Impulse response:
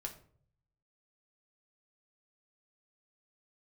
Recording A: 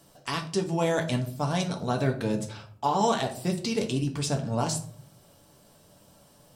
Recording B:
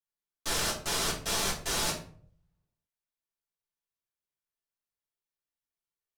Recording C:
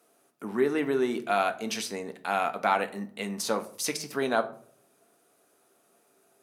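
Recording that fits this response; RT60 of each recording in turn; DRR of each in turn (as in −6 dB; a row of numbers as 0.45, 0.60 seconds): A; 0.55, 0.55, 0.55 seconds; 2.0, −8.0, 6.5 decibels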